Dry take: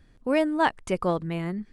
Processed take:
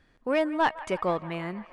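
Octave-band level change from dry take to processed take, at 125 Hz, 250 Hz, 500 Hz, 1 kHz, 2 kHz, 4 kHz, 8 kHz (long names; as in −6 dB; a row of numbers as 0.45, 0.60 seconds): −6.5, −4.5, −1.5, −0.5, −1.0, −1.5, −5.0 decibels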